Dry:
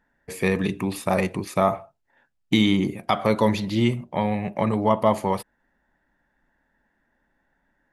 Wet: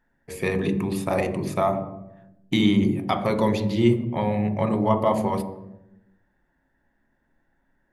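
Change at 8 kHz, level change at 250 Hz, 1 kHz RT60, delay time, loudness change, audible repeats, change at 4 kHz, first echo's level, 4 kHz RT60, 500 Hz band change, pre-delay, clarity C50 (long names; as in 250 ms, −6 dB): can't be measured, +0.5 dB, 0.75 s, no echo audible, 0.0 dB, no echo audible, −3.0 dB, no echo audible, 0.60 s, 0.0 dB, 3 ms, 10.0 dB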